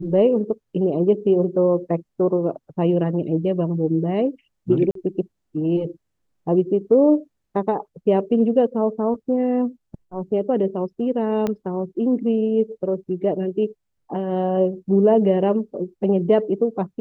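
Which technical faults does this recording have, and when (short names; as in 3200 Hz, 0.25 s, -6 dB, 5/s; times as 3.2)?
4.91–4.95 gap 43 ms
11.47 pop -12 dBFS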